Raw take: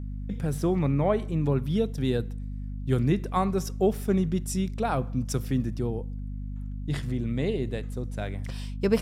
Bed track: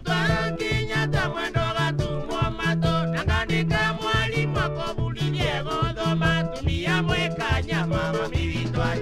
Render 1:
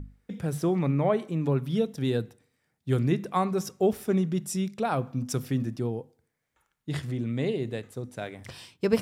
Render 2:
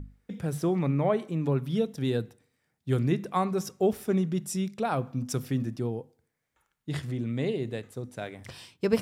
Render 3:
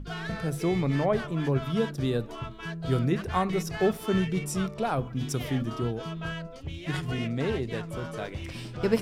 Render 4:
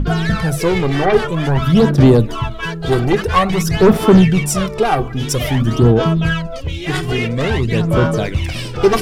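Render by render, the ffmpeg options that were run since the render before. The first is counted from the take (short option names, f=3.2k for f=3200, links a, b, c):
-af "bandreject=f=50:t=h:w=6,bandreject=f=100:t=h:w=6,bandreject=f=150:t=h:w=6,bandreject=f=200:t=h:w=6,bandreject=f=250:t=h:w=6"
-af "volume=-1dB"
-filter_complex "[1:a]volume=-13dB[a];[0:a][a]amix=inputs=2:normalize=0"
-af "aeval=exprs='0.299*sin(PI/2*3.16*val(0)/0.299)':c=same,aphaser=in_gain=1:out_gain=1:delay=2.6:decay=0.62:speed=0.5:type=sinusoidal"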